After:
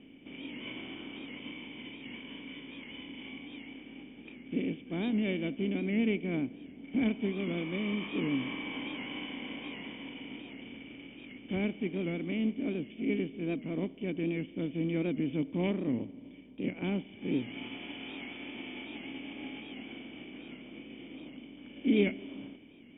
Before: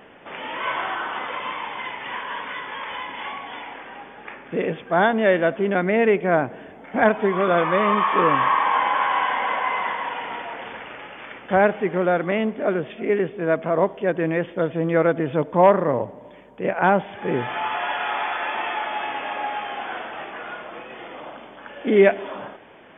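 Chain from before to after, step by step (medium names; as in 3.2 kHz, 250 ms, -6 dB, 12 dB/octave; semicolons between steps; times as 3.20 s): spectral contrast reduction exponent 0.64; in parallel at -1 dB: compression, threshold -35 dBFS, peak gain reduction 23 dB; on the sum: cascade formant filter i; distance through air 110 m; warped record 78 rpm, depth 100 cents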